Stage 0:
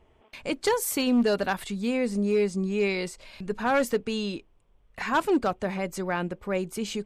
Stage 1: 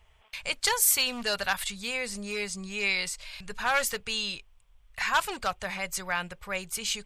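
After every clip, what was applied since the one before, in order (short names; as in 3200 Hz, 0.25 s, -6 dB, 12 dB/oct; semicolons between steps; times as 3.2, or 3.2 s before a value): passive tone stack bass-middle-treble 10-0-10; gain +8.5 dB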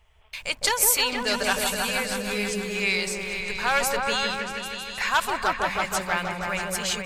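in parallel at -9.5 dB: bit-crush 8-bit; on the sum: repeats that get brighter 0.159 s, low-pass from 750 Hz, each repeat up 1 oct, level 0 dB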